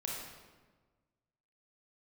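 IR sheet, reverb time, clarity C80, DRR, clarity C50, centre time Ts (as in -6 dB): 1.4 s, 2.5 dB, -3.0 dB, -0.5 dB, 77 ms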